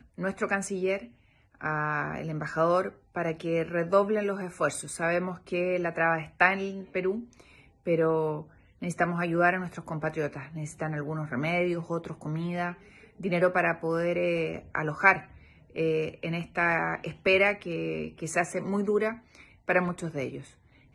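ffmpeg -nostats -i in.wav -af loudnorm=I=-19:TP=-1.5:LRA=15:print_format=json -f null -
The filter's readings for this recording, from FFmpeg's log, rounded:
"input_i" : "-28.8",
"input_tp" : "-4.5",
"input_lra" : "3.7",
"input_thresh" : "-39.3",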